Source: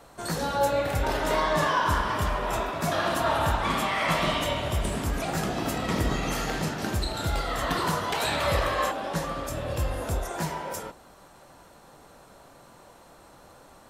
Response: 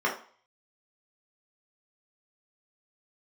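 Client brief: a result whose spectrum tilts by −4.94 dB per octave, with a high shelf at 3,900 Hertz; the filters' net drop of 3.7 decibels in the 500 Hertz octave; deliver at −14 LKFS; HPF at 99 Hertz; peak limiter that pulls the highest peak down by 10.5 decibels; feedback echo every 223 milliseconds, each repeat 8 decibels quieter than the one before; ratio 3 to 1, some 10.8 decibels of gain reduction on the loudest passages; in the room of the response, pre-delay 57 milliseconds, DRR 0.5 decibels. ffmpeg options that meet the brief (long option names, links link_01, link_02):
-filter_complex "[0:a]highpass=99,equalizer=frequency=500:width_type=o:gain=-4.5,highshelf=frequency=3900:gain=-8.5,acompressor=threshold=-38dB:ratio=3,alimiter=level_in=11dB:limit=-24dB:level=0:latency=1,volume=-11dB,aecho=1:1:223|446|669|892|1115:0.398|0.159|0.0637|0.0255|0.0102,asplit=2[link_01][link_02];[1:a]atrim=start_sample=2205,adelay=57[link_03];[link_02][link_03]afir=irnorm=-1:irlink=0,volume=-13dB[link_04];[link_01][link_04]amix=inputs=2:normalize=0,volume=26dB"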